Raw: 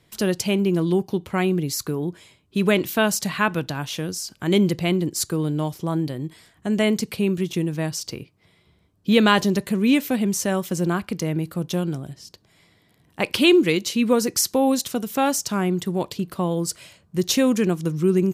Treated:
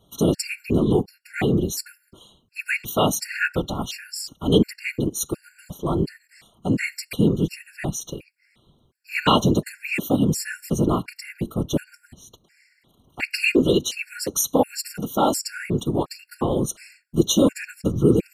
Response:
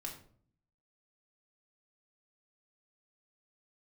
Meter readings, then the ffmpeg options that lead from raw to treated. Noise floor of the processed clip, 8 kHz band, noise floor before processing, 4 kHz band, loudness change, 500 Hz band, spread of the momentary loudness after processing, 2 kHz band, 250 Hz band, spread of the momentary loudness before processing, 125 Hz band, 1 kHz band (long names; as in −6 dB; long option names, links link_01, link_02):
−65 dBFS, −0.5 dB, −61 dBFS, −2.0 dB, −1.0 dB, −1.5 dB, 12 LU, −0.5 dB, −2.0 dB, 10 LU, +0.5 dB, −0.5 dB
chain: -af "afftfilt=real='hypot(re,im)*cos(2*PI*random(0))':imag='hypot(re,im)*sin(2*PI*random(1))':win_size=512:overlap=0.75,afftfilt=real='re*gt(sin(2*PI*1.4*pts/sr)*(1-2*mod(floor(b*sr/1024/1400),2)),0)':imag='im*gt(sin(2*PI*1.4*pts/sr)*(1-2*mod(floor(b*sr/1024/1400),2)),0)':win_size=1024:overlap=0.75,volume=8dB"